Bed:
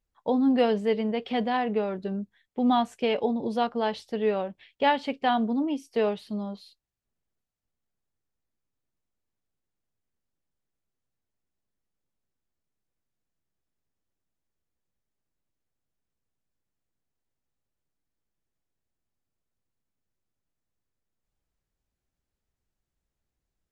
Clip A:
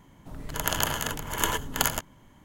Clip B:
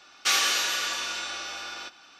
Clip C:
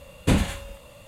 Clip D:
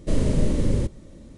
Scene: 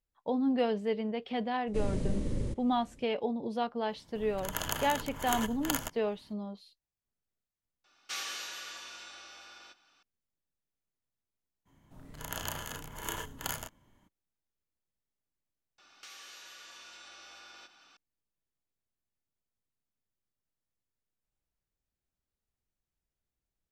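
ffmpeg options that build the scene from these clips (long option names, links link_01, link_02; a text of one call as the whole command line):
ffmpeg -i bed.wav -i cue0.wav -i cue1.wav -i cue2.wav -i cue3.wav -filter_complex "[1:a]asplit=2[link_01][link_02];[2:a]asplit=2[link_03][link_04];[0:a]volume=-6.5dB[link_05];[link_02]asplit=2[link_06][link_07];[link_07]adelay=33,volume=-4dB[link_08];[link_06][link_08]amix=inputs=2:normalize=0[link_09];[link_04]acompressor=threshold=-40dB:ratio=6:attack=3.2:release=140:knee=1:detection=peak[link_10];[4:a]atrim=end=1.37,asetpts=PTS-STARTPTS,volume=-11.5dB,afade=type=in:duration=0.004:curve=hsin,afade=type=out:start_time=1.366:duration=0.004:curve=hsin,adelay=1670[link_11];[link_01]atrim=end=2.44,asetpts=PTS-STARTPTS,volume=-8dB,afade=type=in:duration=0.004:curve=hsin,afade=type=out:start_time=2.436:duration=0.004:curve=hsin,adelay=171549S[link_12];[link_03]atrim=end=2.19,asetpts=PTS-STARTPTS,volume=-15dB,afade=type=in:duration=0.004:curve=hsin,afade=type=out:start_time=2.186:duration=0.004:curve=hsin,adelay=7840[link_13];[link_09]atrim=end=2.44,asetpts=PTS-STARTPTS,volume=-12.5dB,afade=type=in:duration=0.02,afade=type=out:start_time=2.42:duration=0.02,adelay=11650[link_14];[link_10]atrim=end=2.19,asetpts=PTS-STARTPTS,volume=-8.5dB,afade=type=in:duration=0.004:curve=hsin,afade=type=out:start_time=2.186:duration=0.004:curve=hsin,adelay=15780[link_15];[link_05][link_11][link_12][link_13][link_14][link_15]amix=inputs=6:normalize=0" out.wav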